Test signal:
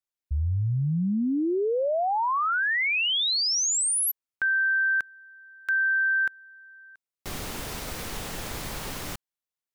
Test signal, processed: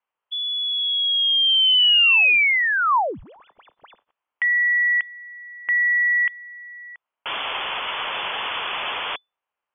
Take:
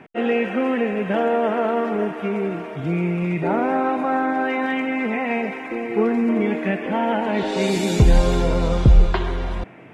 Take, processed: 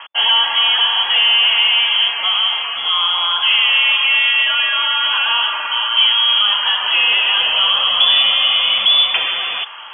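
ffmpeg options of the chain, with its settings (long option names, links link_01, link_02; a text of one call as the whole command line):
ffmpeg -i in.wav -filter_complex "[0:a]asplit=2[link_01][link_02];[link_02]highpass=frequency=720:poles=1,volume=19dB,asoftclip=type=tanh:threshold=-3.5dB[link_03];[link_01][link_03]amix=inputs=2:normalize=0,lowpass=frequency=1500:poles=1,volume=-6dB,acrossover=split=170|1600[link_04][link_05][link_06];[link_06]volume=32.5dB,asoftclip=hard,volume=-32.5dB[link_07];[link_04][link_05][link_07]amix=inputs=3:normalize=0,lowpass=frequency=3000:width_type=q:width=0.5098,lowpass=frequency=3000:width_type=q:width=0.6013,lowpass=frequency=3000:width_type=q:width=0.9,lowpass=frequency=3000:width_type=q:width=2.563,afreqshift=-3500,equalizer=frequency=500:width_type=o:width=1:gain=5,equalizer=frequency=1000:width_type=o:width=1:gain=10,equalizer=frequency=2000:width_type=o:width=1:gain=-4,volume=2dB" out.wav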